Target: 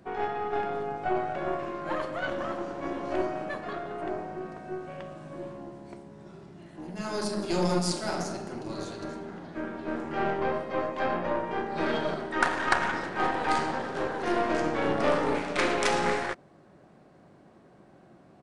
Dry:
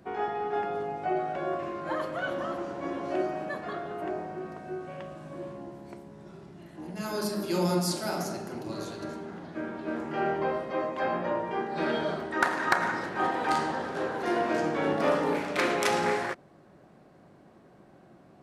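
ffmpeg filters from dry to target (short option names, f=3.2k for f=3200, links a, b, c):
-af "aeval=exprs='0.299*(cos(1*acos(clip(val(0)/0.299,-1,1)))-cos(1*PI/2))+0.0237*(cos(8*acos(clip(val(0)/0.299,-1,1)))-cos(8*PI/2))':c=same,aresample=22050,aresample=44100"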